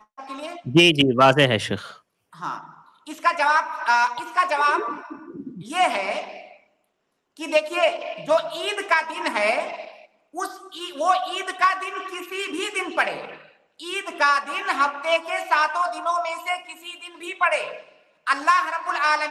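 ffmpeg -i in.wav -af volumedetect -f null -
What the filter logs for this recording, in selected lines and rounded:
mean_volume: -23.7 dB
max_volume: -5.9 dB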